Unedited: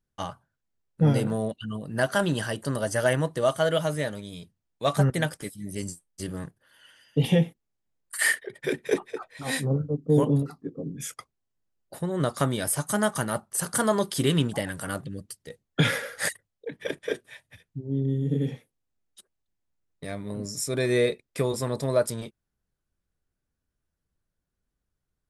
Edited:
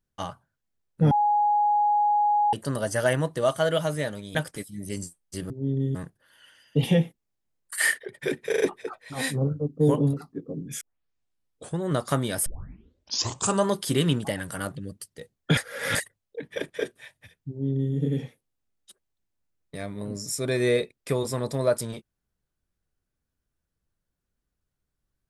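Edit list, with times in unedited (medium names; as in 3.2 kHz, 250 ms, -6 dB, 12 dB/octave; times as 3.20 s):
1.11–2.53 s: bleep 831 Hz -18.5 dBFS
4.35–5.21 s: delete
8.89 s: stutter 0.04 s, 4 plays
11.10 s: tape start 0.99 s
12.75 s: tape start 1.23 s
15.86–16.24 s: reverse
17.78–18.23 s: copy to 6.36 s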